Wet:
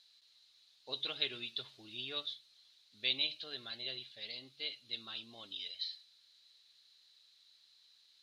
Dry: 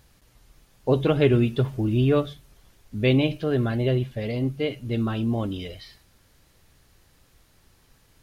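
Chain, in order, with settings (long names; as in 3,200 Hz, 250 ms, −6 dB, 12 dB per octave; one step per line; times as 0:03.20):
resonant band-pass 4,000 Hz, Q 8.5
level +9.5 dB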